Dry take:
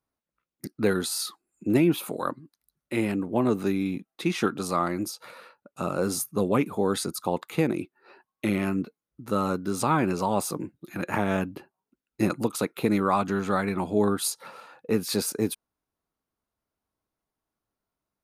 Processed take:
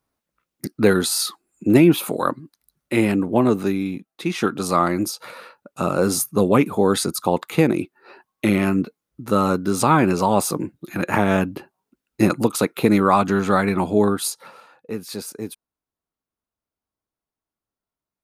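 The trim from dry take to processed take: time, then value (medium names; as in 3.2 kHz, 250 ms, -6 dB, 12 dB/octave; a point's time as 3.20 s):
3.28 s +8 dB
4.12 s +0.5 dB
4.76 s +7.5 dB
13.85 s +7.5 dB
14.96 s -4.5 dB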